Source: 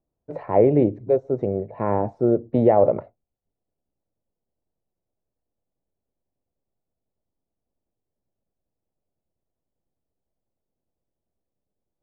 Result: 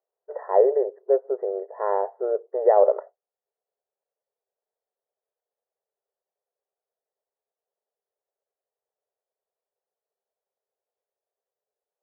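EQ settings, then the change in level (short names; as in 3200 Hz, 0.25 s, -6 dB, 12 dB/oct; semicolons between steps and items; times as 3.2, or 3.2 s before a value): brick-wall FIR band-pass 380–2000 Hz; 0.0 dB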